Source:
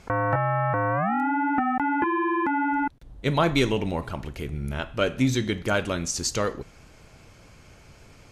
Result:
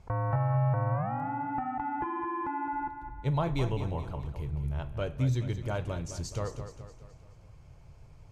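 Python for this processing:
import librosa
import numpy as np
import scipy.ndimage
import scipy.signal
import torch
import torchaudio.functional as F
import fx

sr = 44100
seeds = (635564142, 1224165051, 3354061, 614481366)

y = fx.curve_eq(x, sr, hz=(140.0, 210.0, 970.0, 1400.0), db=(0, -14, -7, -16))
y = fx.echo_feedback(y, sr, ms=212, feedback_pct=48, wet_db=-10.0)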